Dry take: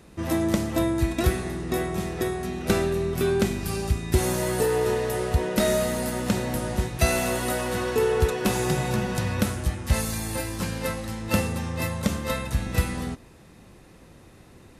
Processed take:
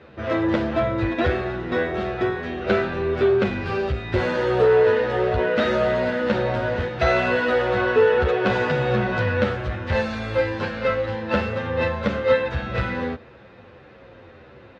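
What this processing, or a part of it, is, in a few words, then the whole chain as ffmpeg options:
barber-pole flanger into a guitar amplifier: -filter_complex "[0:a]asplit=2[link_01][link_02];[link_02]adelay=9.8,afreqshift=-1.6[link_03];[link_01][link_03]amix=inputs=2:normalize=1,asoftclip=type=tanh:threshold=-18.5dB,highpass=89,equalizer=frequency=170:width_type=q:width=4:gain=-10,equalizer=frequency=290:width_type=q:width=4:gain=-5,equalizer=frequency=520:width_type=q:width=4:gain=8,equalizer=frequency=1500:width_type=q:width=4:gain=7,lowpass=frequency=3600:width=0.5412,lowpass=frequency=3600:width=1.3066,volume=8dB"

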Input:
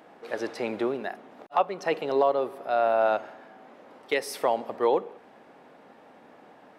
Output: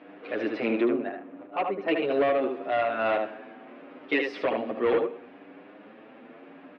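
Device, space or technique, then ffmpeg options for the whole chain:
barber-pole flanger into a guitar amplifier: -filter_complex "[0:a]asettb=1/sr,asplit=3[link_01][link_02][link_03];[link_01]atrim=end=0.844[link_04];[link_02]atrim=start=0.84:end=1.88,asetpts=PTS-STARTPTS,afade=type=in:duration=0.004:curve=qsin,afade=type=out:start_time=1.036:duration=0.004:curve=qsin,lowpass=frequency=1000:poles=1[link_05];[link_03]atrim=start=1.876[link_06];[link_04][link_05]acrossfade=duration=0.004:curve1=hsin:curve2=qsin[link_07];[link_07][link_06]acrossfade=duration=0.004:curve1=qsin:curve2=hsin,aecho=1:1:76:0.473,asplit=2[link_08][link_09];[link_09]adelay=8,afreqshift=0.74[link_10];[link_08][link_10]amix=inputs=2:normalize=1,asoftclip=type=tanh:threshold=-24dB,highpass=82,equalizer=frequency=130:width_type=q:width=4:gain=-5,equalizer=frequency=290:width_type=q:width=4:gain=9,equalizer=frequency=860:width_type=q:width=4:gain=-8,equalizer=frequency=2500:width_type=q:width=4:gain=5,lowpass=frequency=3400:width=0.5412,lowpass=frequency=3400:width=1.3066,volume=5.5dB"

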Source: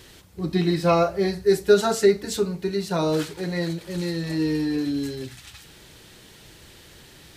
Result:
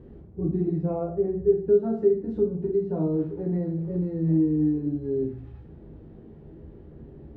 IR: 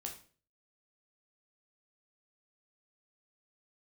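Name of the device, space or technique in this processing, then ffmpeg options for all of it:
television next door: -filter_complex "[0:a]acompressor=threshold=-30dB:ratio=3,lowpass=320[link_01];[1:a]atrim=start_sample=2205[link_02];[link_01][link_02]afir=irnorm=-1:irlink=0,equalizer=frequency=2200:width=0.32:gain=4.5,asettb=1/sr,asplit=3[link_03][link_04][link_05];[link_03]atrim=end=0.904[link_06];[link_04]atrim=start=0.9:end=1.57,asetpts=PTS-STARTPTS,afade=type=in:duration=0.004:curve=qsin,afade=type=out:start_time=0.666:duration=0.004:curve=qsin,lowpass=2600[link_07];[link_05]atrim=start=1.566[link_08];[link_06][link_07]acrossfade=duration=0.004:curve1=hsin:curve2=qsin[link_09];[link_09][link_08]acrossfade=duration=0.004:curve1=qsin:curve2=hsin,equalizer=frequency=430:width=0.54:gain=3.5,volume=8dB"

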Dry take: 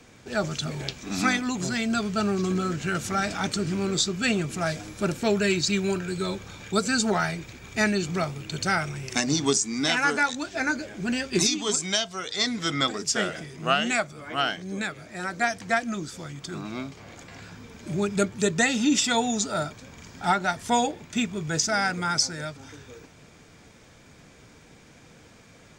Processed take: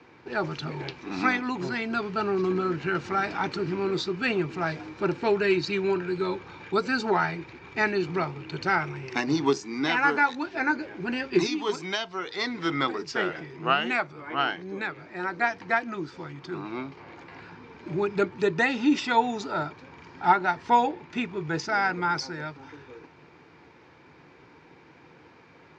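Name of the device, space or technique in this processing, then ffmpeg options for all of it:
guitar cabinet: -af "highpass=110,equalizer=frequency=110:width_type=q:width=4:gain=-5,equalizer=frequency=210:width_type=q:width=4:gain=-9,equalizer=frequency=350:width_type=q:width=4:gain=6,equalizer=frequency=630:width_type=q:width=4:gain=-6,equalizer=frequency=920:width_type=q:width=4:gain=8,equalizer=frequency=3400:width_type=q:width=4:gain=-8,lowpass=frequency=4000:width=0.5412,lowpass=frequency=4000:width=1.3066"

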